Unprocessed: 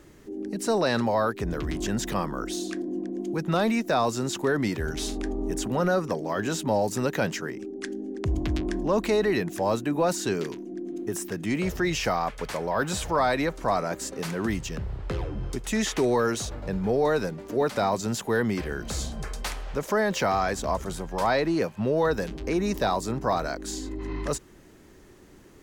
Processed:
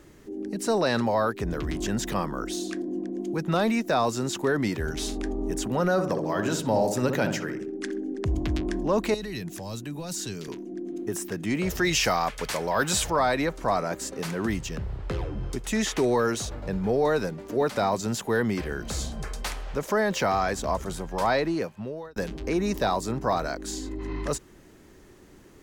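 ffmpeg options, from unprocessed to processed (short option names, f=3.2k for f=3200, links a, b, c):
-filter_complex "[0:a]asettb=1/sr,asplit=3[a][b][c];[a]atrim=end=5.924[d];[b]atrim=start=5.92:end=8.25,asetpts=PTS-STARTPTS,afade=t=in:d=0.004:c=qsin,afade=t=out:st=2.326:d=0.004:c=qsin,asplit=2[e][f];[f]adelay=64,lowpass=f=1.1k:p=1,volume=-5dB,asplit=2[g][h];[h]adelay=64,lowpass=f=1.1k:p=1,volume=0.54,asplit=2[i][j];[j]adelay=64,lowpass=f=1.1k:p=1,volume=0.54,asplit=2[k][l];[l]adelay=64,lowpass=f=1.1k:p=1,volume=0.54,asplit=2[m][n];[n]adelay=64,lowpass=f=1.1k:p=1,volume=0.54,asplit=2[o][p];[p]adelay=64,lowpass=f=1.1k:p=1,volume=0.54,asplit=2[q][r];[r]adelay=64,lowpass=f=1.1k:p=1,volume=0.54[s];[e][g][i][k][m][o][q][s]amix=inputs=8:normalize=0,atrim=end_sample=102753[t];[c]atrim=start=8.246[u];[d][t]acrossfade=d=0.004:c1=hsin:c2=qsin[v];[v][u]acrossfade=d=0.004:c1=qsin:c2=hsin,asettb=1/sr,asplit=3[w][x][y];[w]atrim=end=9.144[z];[x]atrim=start=9.14:end=10.48,asetpts=PTS-STARTPTS,afade=t=in:d=0.004:c=qsin,afade=t=out:st=1.336:d=0.004:c=qsin,acrossover=split=180|3000[aa][ab][ac];[ab]acompressor=threshold=-40dB:ratio=4:attack=3.2:release=140:knee=2.83:detection=peak[ad];[aa][ad][ac]amix=inputs=3:normalize=0[ae];[y]atrim=start=10.476[af];[z][ae]acrossfade=d=0.004:c1=hsin:c2=qsin[ag];[ag][af]acrossfade=d=0.004:c1=qsin:c2=hsin,asettb=1/sr,asplit=3[ah][ai][aj];[ah]atrim=end=11.704[ak];[ai]atrim=start=11.7:end=13.1,asetpts=PTS-STARTPTS,afade=t=in:d=0.004:c=qsin,afade=t=out:st=1.396:d=0.004:c=qsin,highshelf=f=2k:g=8[al];[aj]atrim=start=13.096[am];[ak][al]acrossfade=d=0.004:c1=hsin:c2=qsin[an];[an][am]acrossfade=d=0.004:c1=qsin:c2=hsin,asplit=2[ao][ap];[ao]atrim=end=22.16,asetpts=PTS-STARTPTS,afade=t=out:st=21.35:d=0.81[aq];[ap]atrim=start=22.16,asetpts=PTS-STARTPTS,afade=t=in:d=0.004:c=hsin[ar];[aq][ar]concat=n=2:v=0:a=1"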